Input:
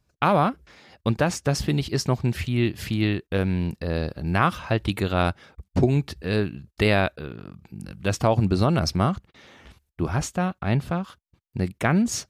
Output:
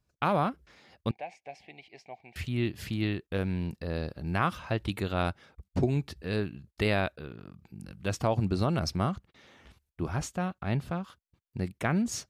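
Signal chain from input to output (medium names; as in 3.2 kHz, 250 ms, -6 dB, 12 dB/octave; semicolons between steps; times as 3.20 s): 1.11–2.36 s: two resonant band-passes 1.3 kHz, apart 1.6 oct; trim -7 dB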